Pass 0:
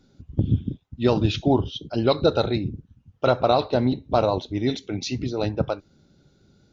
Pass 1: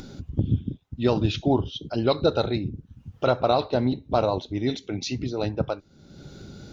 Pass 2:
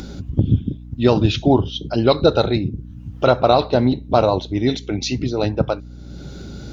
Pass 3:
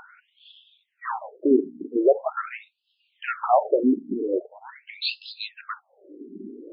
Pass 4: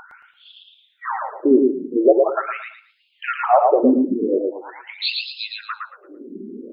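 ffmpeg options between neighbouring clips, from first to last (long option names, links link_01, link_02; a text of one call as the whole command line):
ffmpeg -i in.wav -af "acompressor=mode=upward:threshold=-24dB:ratio=2.5,volume=-2dB" out.wav
ffmpeg -i in.wav -af "aeval=exprs='val(0)+0.00794*(sin(2*PI*60*n/s)+sin(2*PI*2*60*n/s)/2+sin(2*PI*3*60*n/s)/3+sin(2*PI*4*60*n/s)/4+sin(2*PI*5*60*n/s)/5)':channel_layout=same,volume=7dB" out.wav
ffmpeg -i in.wav -af "acontrast=86,afftfilt=real='re*between(b*sr/1024,290*pow(3700/290,0.5+0.5*sin(2*PI*0.43*pts/sr))/1.41,290*pow(3700/290,0.5+0.5*sin(2*PI*0.43*pts/sr))*1.41)':imag='im*between(b*sr/1024,290*pow(3700/290,0.5+0.5*sin(2*PI*0.43*pts/sr))/1.41,290*pow(3700/290,0.5+0.5*sin(2*PI*0.43*pts/sr))*1.41)':win_size=1024:overlap=0.75,volume=-5.5dB" out.wav
ffmpeg -i in.wav -af "aecho=1:1:112|224|336|448:0.708|0.184|0.0479|0.0124,volume=4dB" out.wav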